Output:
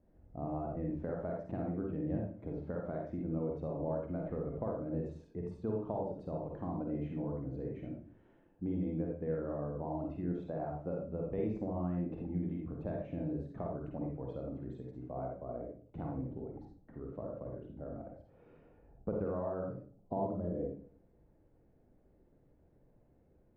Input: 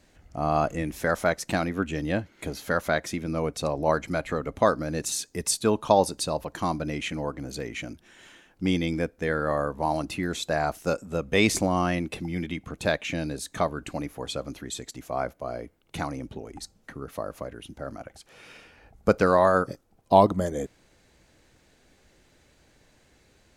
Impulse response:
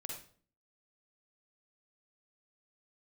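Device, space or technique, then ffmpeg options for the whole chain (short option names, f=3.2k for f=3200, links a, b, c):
television next door: -filter_complex "[0:a]acompressor=threshold=-27dB:ratio=3,lowpass=590[a];[1:a]atrim=start_sample=2205[b];[a][b]afir=irnorm=-1:irlink=0,volume=-2.5dB"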